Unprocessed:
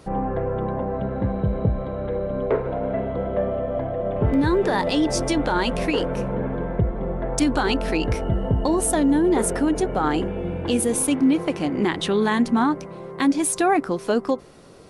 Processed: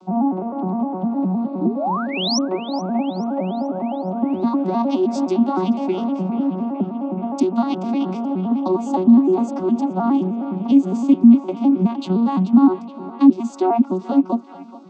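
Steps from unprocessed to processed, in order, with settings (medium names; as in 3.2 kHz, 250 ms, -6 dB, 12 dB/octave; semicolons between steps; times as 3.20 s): vocoder on a broken chord major triad, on F#3, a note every 103 ms; treble shelf 5.1 kHz -5.5 dB; in parallel at +1 dB: compression, threshold -27 dBFS, peak gain reduction 16 dB; on the sum: painted sound rise, 1.61–2.39 s, 280–6100 Hz -24 dBFS; static phaser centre 480 Hz, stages 6; on a send: band-passed feedback delay 428 ms, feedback 73%, band-pass 1.9 kHz, level -11.5 dB; on the sum: trim +3.5 dB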